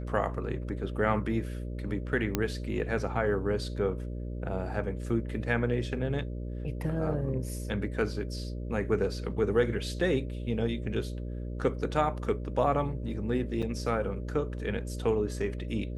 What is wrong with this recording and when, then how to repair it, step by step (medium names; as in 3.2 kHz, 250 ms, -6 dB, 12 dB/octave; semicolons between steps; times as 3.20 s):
buzz 60 Hz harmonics 10 -36 dBFS
2.35 s: pop -12 dBFS
13.62–13.63 s: dropout 6.2 ms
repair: de-click; de-hum 60 Hz, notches 10; interpolate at 13.62 s, 6.2 ms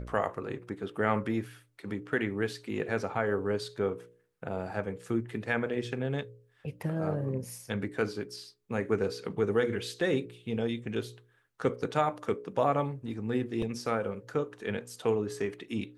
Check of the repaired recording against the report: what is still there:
nothing left